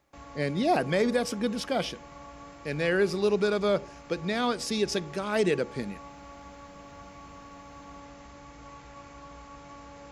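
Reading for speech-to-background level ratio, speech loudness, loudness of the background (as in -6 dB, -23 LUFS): 19.0 dB, -28.0 LUFS, -47.0 LUFS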